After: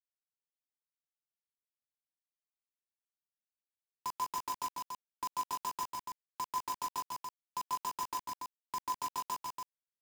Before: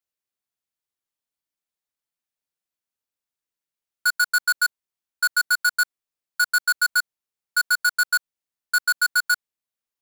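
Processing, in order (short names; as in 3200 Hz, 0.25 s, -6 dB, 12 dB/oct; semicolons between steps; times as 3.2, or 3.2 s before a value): compressor 5:1, threshold -21 dBFS, peak gain reduction 3 dB; frequency shift -450 Hz; vocal tract filter u; bit-crush 8-bit; on a send: loudspeakers at several distances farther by 55 m -3 dB, 98 m -5 dB; on the sum: gain +8.5 dB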